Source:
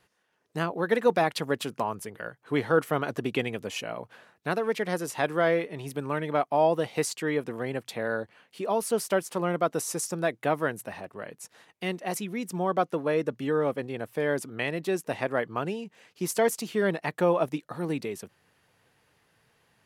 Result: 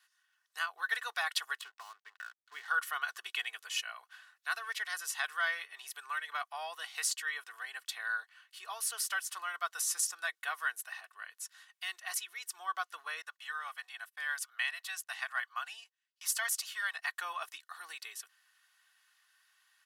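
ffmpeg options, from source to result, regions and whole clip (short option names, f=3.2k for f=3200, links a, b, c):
-filter_complex "[0:a]asettb=1/sr,asplit=3[a][b][c];[a]atrim=end=1.614[d];[b]atrim=start=1.61:end=2.68,asetpts=PTS-STARTPTS,afade=t=in:d=0.004:c=qsin,afade=t=out:st=1.066:d=0.004:c=qsin,lowpass=2.1k,aeval=exprs='sgn(val(0))*max(abs(val(0))-0.00422,0)':c=same,acrossover=split=390|3000[e][f][g];[f]acompressor=threshold=-38dB:ratio=3:attack=3.2:release=140:knee=2.83:detection=peak[h];[e][h][g]amix=inputs=3:normalize=0[i];[c]atrim=start=2.676[j];[d][i]acrossfade=d=0.004:c1=hsin:c2=qsin[k];[k][j]acrossfade=d=0.004:c1=qsin:c2=hsin,asettb=1/sr,asplit=3[l][m][n];[l]atrim=end=13.224[o];[m]atrim=start=13.22:end=16.95,asetpts=PTS-STARTPTS,afade=t=in:d=0.004:c=qsin,afade=t=out:st=3.726:d=0.004:c=qsin,agate=range=-30dB:threshold=-46dB:ratio=16:release=100:detection=peak,highpass=f=610:w=0.5412,highpass=f=610:w=1.3066[p];[n]atrim=start=16.946[q];[o][p]acrossfade=d=0.004:c1=hsin:c2=qsin[r];[r][q]acrossfade=d=0.004:c1=qsin:c2=hsin,highpass=f=1.3k:w=0.5412,highpass=f=1.3k:w=1.3066,equalizer=f=2.3k:t=o:w=0.31:g=-7.5,aecho=1:1:2.7:0.54"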